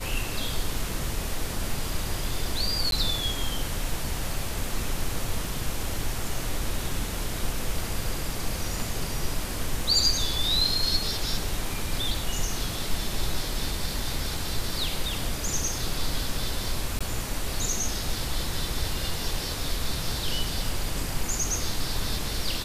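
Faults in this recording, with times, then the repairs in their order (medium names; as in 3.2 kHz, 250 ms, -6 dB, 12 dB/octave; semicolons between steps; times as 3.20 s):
2.91–2.92 s: dropout 12 ms
5.45 s: dropout 2.3 ms
16.99–17.01 s: dropout 16 ms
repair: interpolate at 2.91 s, 12 ms; interpolate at 5.45 s, 2.3 ms; interpolate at 16.99 s, 16 ms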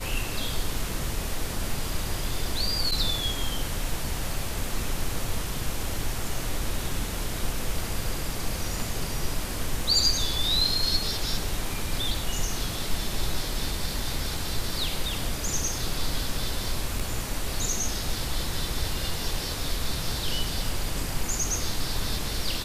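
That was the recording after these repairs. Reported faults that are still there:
nothing left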